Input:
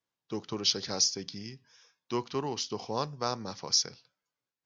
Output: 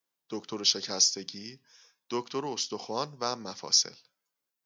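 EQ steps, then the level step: HPF 180 Hz 12 dB/oct; high shelf 8500 Hz +11 dB; 0.0 dB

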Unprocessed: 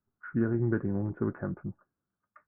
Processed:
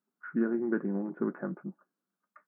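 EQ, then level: brick-wall FIR high-pass 160 Hz; 0.0 dB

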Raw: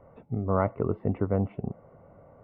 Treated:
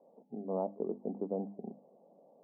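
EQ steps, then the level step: elliptic band-pass 200–830 Hz, stop band 40 dB; notches 50/100/150/200/250/300 Hz; -6.5 dB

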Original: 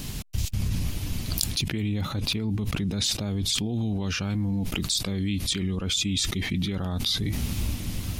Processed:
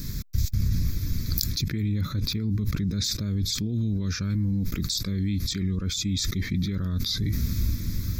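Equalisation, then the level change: low shelf 220 Hz +6.5 dB; high shelf 8500 Hz +11.5 dB; fixed phaser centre 2900 Hz, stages 6; -2.5 dB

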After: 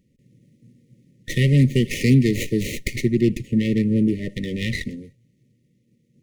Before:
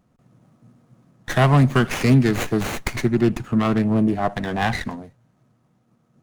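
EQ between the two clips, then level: brick-wall FIR band-stop 580–1800 Hz; bell 520 Hz -5 dB 0.21 oct; 0.0 dB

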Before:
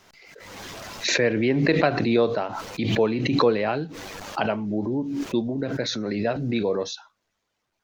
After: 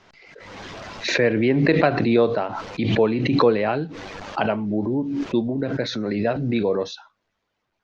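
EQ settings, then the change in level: air absorption 140 m; +3.0 dB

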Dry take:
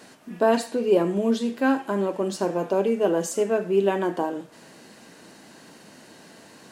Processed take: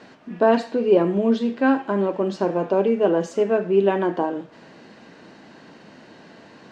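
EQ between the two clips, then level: air absorption 180 m; +3.5 dB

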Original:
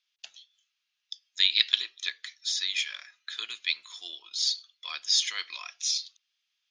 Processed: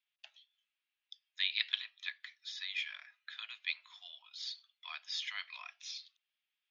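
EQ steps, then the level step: rippled Chebyshev high-pass 600 Hz, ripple 3 dB; LPF 2700 Hz 12 dB/oct; -4.0 dB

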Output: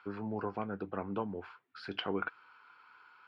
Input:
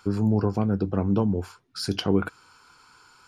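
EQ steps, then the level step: band-pass 2300 Hz, Q 0.76; air absorption 470 m; +2.5 dB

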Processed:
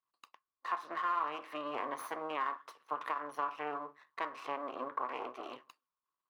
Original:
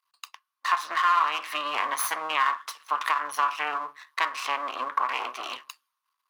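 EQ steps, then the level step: EQ curve 470 Hz 0 dB, 1000 Hz -12 dB, 6200 Hz -24 dB; +1.0 dB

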